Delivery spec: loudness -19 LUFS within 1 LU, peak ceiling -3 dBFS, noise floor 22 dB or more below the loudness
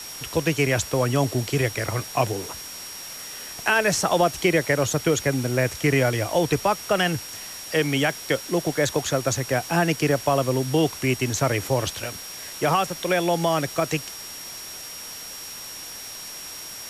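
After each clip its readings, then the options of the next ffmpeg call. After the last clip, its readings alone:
steady tone 5600 Hz; tone level -38 dBFS; noise floor -37 dBFS; noise floor target -46 dBFS; loudness -24.0 LUFS; peak -8.0 dBFS; loudness target -19.0 LUFS
-> -af "bandreject=f=5.6k:w=30"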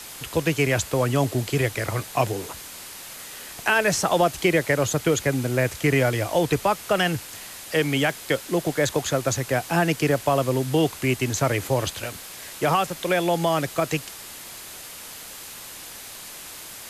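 steady tone none; noise floor -40 dBFS; noise floor target -46 dBFS
-> -af "afftdn=nr=6:nf=-40"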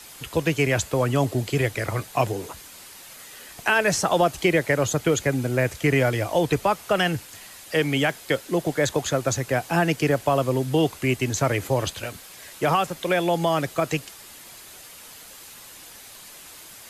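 noise floor -44 dBFS; noise floor target -46 dBFS
-> -af "afftdn=nr=6:nf=-44"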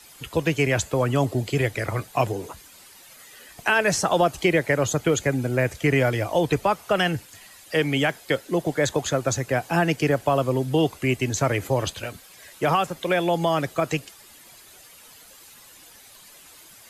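noise floor -49 dBFS; loudness -23.5 LUFS; peak -8.0 dBFS; loudness target -19.0 LUFS
-> -af "volume=4.5dB"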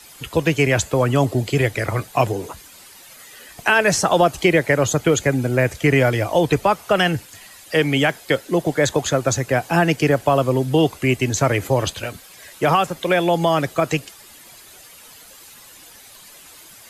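loudness -19.0 LUFS; peak -3.5 dBFS; noise floor -45 dBFS

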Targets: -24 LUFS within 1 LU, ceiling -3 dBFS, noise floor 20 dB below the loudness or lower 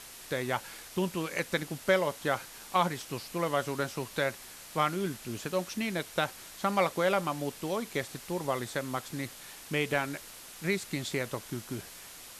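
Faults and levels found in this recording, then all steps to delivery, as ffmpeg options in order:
noise floor -48 dBFS; noise floor target -53 dBFS; loudness -32.5 LUFS; peak -12.0 dBFS; loudness target -24.0 LUFS
-> -af "afftdn=nr=6:nf=-48"
-af "volume=8.5dB"

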